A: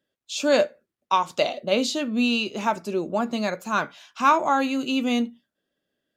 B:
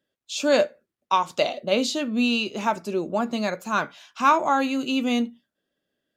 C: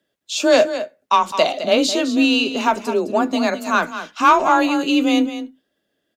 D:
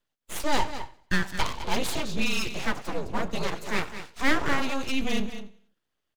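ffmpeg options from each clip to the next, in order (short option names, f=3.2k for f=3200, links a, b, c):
-af anull
-filter_complex "[0:a]acontrast=68,afreqshift=26,asplit=2[a][b];[b]aecho=0:1:210:0.266[c];[a][c]amix=inputs=2:normalize=0"
-af "aecho=1:1:92|184|276:0.126|0.0504|0.0201,afreqshift=-160,aeval=exprs='abs(val(0))':c=same,volume=-7.5dB"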